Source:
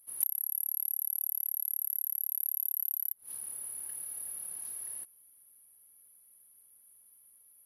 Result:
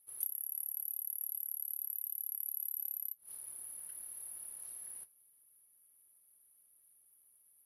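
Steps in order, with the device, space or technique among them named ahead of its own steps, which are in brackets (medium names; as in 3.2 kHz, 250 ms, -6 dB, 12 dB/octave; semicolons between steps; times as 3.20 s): 0.45–1.03 s: peaking EQ 910 Hz +5.5 dB 0.94 oct; alien voice (ring modulator 150 Hz; flange 0.93 Hz, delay 7.7 ms, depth 4.4 ms, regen -67%); trim +1 dB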